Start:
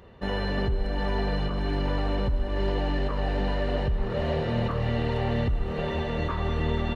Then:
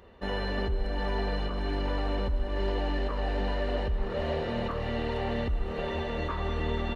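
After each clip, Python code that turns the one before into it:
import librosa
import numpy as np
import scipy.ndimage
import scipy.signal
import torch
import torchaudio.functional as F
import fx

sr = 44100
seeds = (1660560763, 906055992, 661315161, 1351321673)

y = fx.peak_eq(x, sr, hz=130.0, db=-11.5, octaves=0.72)
y = y * 10.0 ** (-2.0 / 20.0)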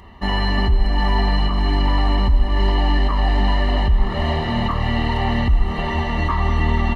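y = x + 0.79 * np.pad(x, (int(1.0 * sr / 1000.0), 0))[:len(x)]
y = y * 10.0 ** (9.0 / 20.0)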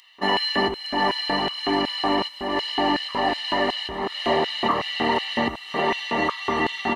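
y = fx.filter_lfo_highpass(x, sr, shape='square', hz=2.7, low_hz=350.0, high_hz=3300.0, q=1.4)
y = y * 10.0 ** (2.5 / 20.0)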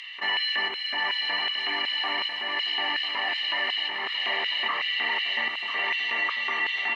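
y = fx.bandpass_q(x, sr, hz=2300.0, q=2.8)
y = y + 10.0 ** (-13.0 / 20.0) * np.pad(y, (int(995 * sr / 1000.0), 0))[:len(y)]
y = fx.env_flatten(y, sr, amount_pct=50)
y = y * 10.0 ** (3.0 / 20.0)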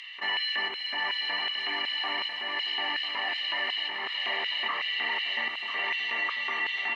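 y = x + 10.0 ** (-23.5 / 20.0) * np.pad(x, (int(572 * sr / 1000.0), 0))[:len(x)]
y = y * 10.0 ** (-3.0 / 20.0)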